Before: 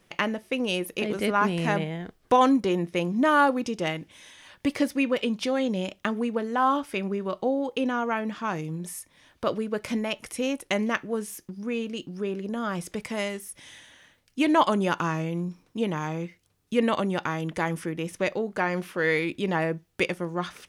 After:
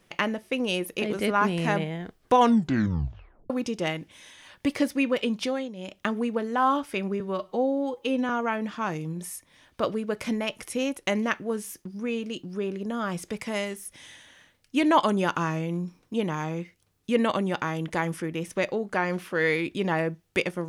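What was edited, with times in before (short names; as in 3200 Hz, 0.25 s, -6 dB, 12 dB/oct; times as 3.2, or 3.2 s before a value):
2.36 tape stop 1.14 s
5.44–6.03 dip -12.5 dB, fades 0.27 s
7.2–7.93 stretch 1.5×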